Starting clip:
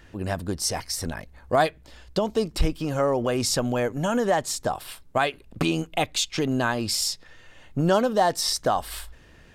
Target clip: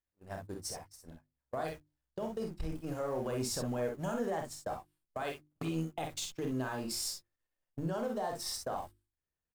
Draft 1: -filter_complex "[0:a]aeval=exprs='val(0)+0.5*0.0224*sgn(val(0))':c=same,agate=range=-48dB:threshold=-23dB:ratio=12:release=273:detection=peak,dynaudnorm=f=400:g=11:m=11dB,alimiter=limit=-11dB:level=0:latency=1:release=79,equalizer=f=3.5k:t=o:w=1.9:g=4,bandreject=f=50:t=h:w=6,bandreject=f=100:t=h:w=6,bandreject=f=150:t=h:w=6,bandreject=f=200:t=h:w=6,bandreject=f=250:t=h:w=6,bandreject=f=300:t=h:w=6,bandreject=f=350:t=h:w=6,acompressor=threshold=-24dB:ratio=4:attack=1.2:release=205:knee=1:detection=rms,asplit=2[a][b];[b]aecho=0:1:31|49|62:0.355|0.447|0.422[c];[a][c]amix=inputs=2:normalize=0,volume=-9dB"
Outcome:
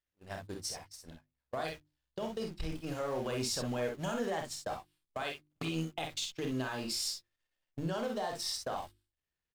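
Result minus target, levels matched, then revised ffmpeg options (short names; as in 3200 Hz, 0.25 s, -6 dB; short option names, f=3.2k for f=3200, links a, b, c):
4000 Hz band +4.0 dB
-filter_complex "[0:a]aeval=exprs='val(0)+0.5*0.0224*sgn(val(0))':c=same,agate=range=-48dB:threshold=-23dB:ratio=12:release=273:detection=peak,dynaudnorm=f=400:g=11:m=11dB,alimiter=limit=-11dB:level=0:latency=1:release=79,equalizer=f=3.5k:t=o:w=1.9:g=-6.5,bandreject=f=50:t=h:w=6,bandreject=f=100:t=h:w=6,bandreject=f=150:t=h:w=6,bandreject=f=200:t=h:w=6,bandreject=f=250:t=h:w=6,bandreject=f=300:t=h:w=6,bandreject=f=350:t=h:w=6,acompressor=threshold=-24dB:ratio=4:attack=1.2:release=205:knee=1:detection=rms,asplit=2[a][b];[b]aecho=0:1:31|49|62:0.355|0.447|0.422[c];[a][c]amix=inputs=2:normalize=0,volume=-9dB"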